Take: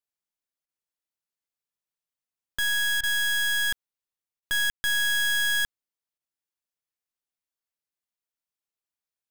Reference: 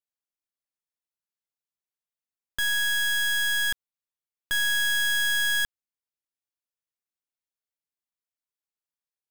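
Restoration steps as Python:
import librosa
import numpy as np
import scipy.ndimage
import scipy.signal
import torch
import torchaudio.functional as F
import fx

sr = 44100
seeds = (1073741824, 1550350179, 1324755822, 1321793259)

y = fx.fix_ambience(x, sr, seeds[0], print_start_s=2.58, print_end_s=3.08, start_s=4.7, end_s=4.84)
y = fx.fix_interpolate(y, sr, at_s=(0.66, 3.01, 4.4, 6.18), length_ms=23.0)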